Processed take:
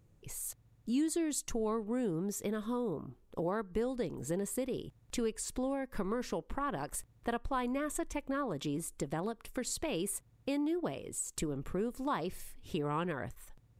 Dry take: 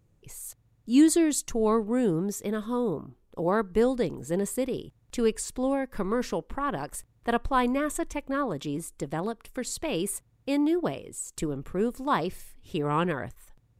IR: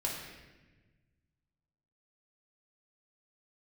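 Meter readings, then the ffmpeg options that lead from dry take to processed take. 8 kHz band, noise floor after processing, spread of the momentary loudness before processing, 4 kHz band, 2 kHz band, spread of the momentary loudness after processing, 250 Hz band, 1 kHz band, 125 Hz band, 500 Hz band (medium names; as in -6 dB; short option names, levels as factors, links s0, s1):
-5.0 dB, -66 dBFS, 11 LU, -6.5 dB, -8.5 dB, 7 LU, -9.0 dB, -8.5 dB, -6.5 dB, -8.5 dB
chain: -af "acompressor=threshold=0.02:ratio=3"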